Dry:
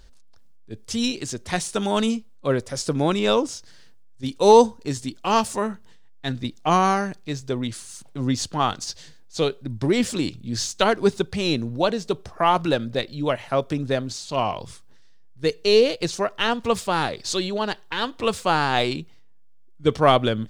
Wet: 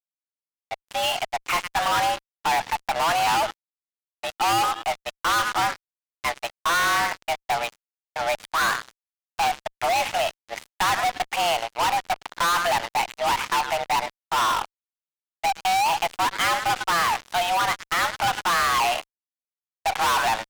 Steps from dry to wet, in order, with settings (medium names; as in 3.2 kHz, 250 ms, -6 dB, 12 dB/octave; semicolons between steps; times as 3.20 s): mistuned SSB +340 Hz 400–2700 Hz; feedback echo behind a high-pass 107 ms, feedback 34%, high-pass 1.4 kHz, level -16 dB; fuzz box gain 39 dB, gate -41 dBFS; trim -6.5 dB